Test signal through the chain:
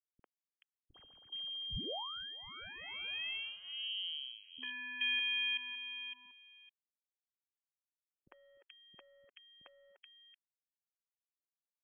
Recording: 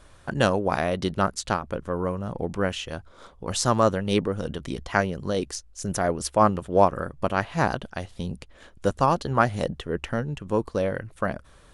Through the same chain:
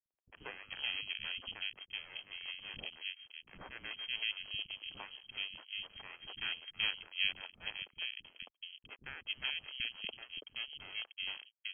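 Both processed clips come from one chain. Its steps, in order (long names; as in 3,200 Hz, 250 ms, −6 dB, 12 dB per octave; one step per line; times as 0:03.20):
spectral magnitudes quantised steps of 30 dB
parametric band 2,000 Hz −5 dB 0.42 octaves
in parallel at +2 dB: downward compressor, threshold −34 dBFS
on the sum: dead-zone distortion −35 dBFS
phaser with its sweep stopped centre 350 Hz, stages 6
half-wave rectification
voice inversion scrambler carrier 3,200 Hz
high-frequency loss of the air 340 metres
three-band delay without the direct sound lows, mids, highs 50/430 ms, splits 290/1,900 Hz
level −5 dB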